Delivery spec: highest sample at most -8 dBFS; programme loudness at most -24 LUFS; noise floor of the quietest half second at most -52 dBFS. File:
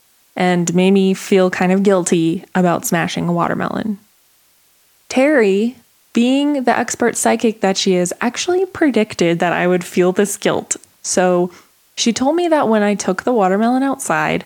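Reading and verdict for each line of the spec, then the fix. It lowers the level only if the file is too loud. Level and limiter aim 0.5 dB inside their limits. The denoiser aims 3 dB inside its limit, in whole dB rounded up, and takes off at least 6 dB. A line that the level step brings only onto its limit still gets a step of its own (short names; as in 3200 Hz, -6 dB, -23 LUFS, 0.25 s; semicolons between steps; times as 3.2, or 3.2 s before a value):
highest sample -2.5 dBFS: fail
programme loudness -16.0 LUFS: fail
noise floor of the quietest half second -55 dBFS: OK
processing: gain -8.5 dB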